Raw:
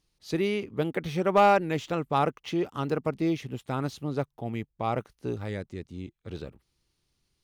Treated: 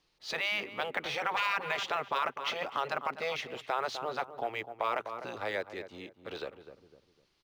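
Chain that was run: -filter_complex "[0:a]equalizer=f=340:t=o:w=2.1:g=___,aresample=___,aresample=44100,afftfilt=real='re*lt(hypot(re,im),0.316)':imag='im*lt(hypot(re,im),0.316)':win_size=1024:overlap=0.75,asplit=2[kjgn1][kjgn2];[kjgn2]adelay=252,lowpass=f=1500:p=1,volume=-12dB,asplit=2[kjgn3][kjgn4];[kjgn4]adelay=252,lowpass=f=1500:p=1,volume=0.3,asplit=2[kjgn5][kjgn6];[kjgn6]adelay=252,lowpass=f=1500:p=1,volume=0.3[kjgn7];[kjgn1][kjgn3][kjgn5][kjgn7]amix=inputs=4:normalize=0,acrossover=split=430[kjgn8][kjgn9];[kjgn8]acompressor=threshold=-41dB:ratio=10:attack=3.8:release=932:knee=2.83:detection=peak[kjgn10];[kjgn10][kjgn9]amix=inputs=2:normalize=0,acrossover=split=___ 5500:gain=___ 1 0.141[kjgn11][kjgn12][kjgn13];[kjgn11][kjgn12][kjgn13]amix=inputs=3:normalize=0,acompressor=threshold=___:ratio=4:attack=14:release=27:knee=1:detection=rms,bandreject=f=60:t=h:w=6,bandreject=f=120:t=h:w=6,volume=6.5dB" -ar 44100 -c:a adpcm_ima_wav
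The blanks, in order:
6.5, 32000, 570, 0.224, -37dB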